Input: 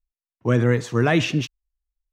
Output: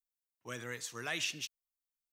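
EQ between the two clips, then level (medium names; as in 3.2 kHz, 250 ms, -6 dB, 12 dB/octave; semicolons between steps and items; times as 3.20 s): pre-emphasis filter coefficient 0.97; -1.5 dB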